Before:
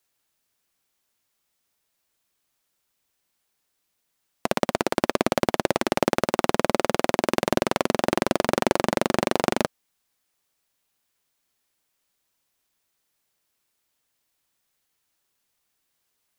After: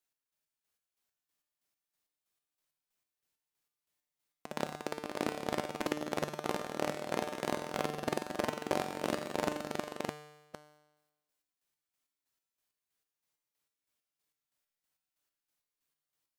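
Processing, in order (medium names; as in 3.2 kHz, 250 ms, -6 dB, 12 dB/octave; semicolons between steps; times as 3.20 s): chunks repeated in reverse 459 ms, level -1 dB; square tremolo 3.1 Hz, depth 60%, duty 40%; feedback comb 150 Hz, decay 1.1 s, harmonics all, mix 80%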